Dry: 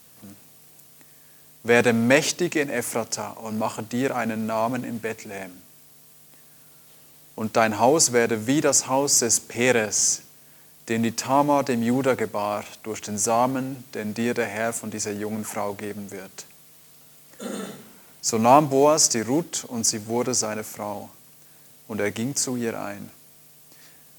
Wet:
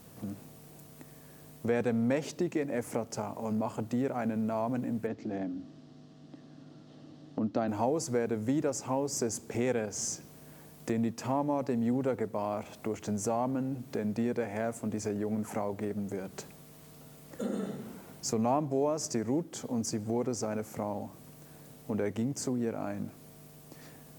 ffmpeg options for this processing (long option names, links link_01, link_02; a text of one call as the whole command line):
ffmpeg -i in.wav -filter_complex "[0:a]asplit=3[link_01][link_02][link_03];[link_01]afade=type=out:start_time=5.06:duration=0.02[link_04];[link_02]highpass=100,equalizer=frequency=290:width_type=q:width=4:gain=10,equalizer=frequency=440:width_type=q:width=4:gain=-6,equalizer=frequency=950:width_type=q:width=4:gain=-7,equalizer=frequency=1500:width_type=q:width=4:gain=-4,equalizer=frequency=2300:width_type=q:width=4:gain=-10,lowpass=frequency=5000:width=0.5412,lowpass=frequency=5000:width=1.3066,afade=type=in:start_time=5.06:duration=0.02,afade=type=out:start_time=7.67:duration=0.02[link_05];[link_03]afade=type=in:start_time=7.67:duration=0.02[link_06];[link_04][link_05][link_06]amix=inputs=3:normalize=0,tiltshelf=frequency=1100:gain=7.5,acompressor=threshold=-36dB:ratio=2.5,volume=1dB" out.wav